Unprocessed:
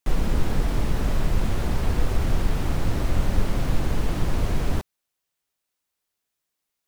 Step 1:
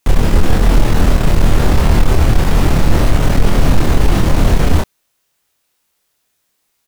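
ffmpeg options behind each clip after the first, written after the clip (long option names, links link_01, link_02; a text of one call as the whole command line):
ffmpeg -i in.wav -filter_complex "[0:a]asplit=2[link_01][link_02];[link_02]aeval=exprs='0.422*sin(PI/2*3.16*val(0)/0.422)':channel_layout=same,volume=-6.5dB[link_03];[link_01][link_03]amix=inputs=2:normalize=0,asplit=2[link_04][link_05];[link_05]adelay=26,volume=-2.5dB[link_06];[link_04][link_06]amix=inputs=2:normalize=0,volume=3dB" out.wav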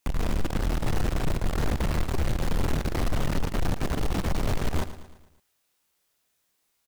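ffmpeg -i in.wav -af "aeval=exprs='(tanh(7.08*val(0)+0.4)-tanh(0.4))/7.08':channel_layout=same,aecho=1:1:112|224|336|448|560:0.211|0.108|0.055|0.028|0.0143,volume=-6dB" out.wav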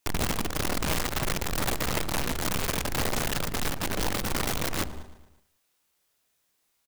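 ffmpeg -i in.wav -af "aecho=1:1:184:0.15,aeval=exprs='(mod(13.3*val(0)+1,2)-1)/13.3':channel_layout=same" out.wav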